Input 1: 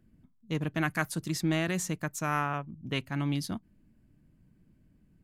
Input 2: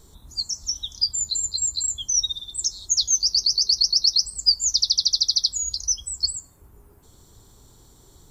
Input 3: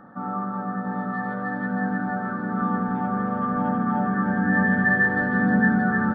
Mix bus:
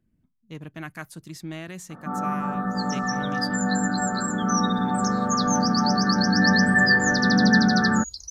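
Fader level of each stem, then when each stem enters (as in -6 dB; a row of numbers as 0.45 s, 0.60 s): -7.0 dB, -9.5 dB, +1.5 dB; 0.00 s, 2.40 s, 1.90 s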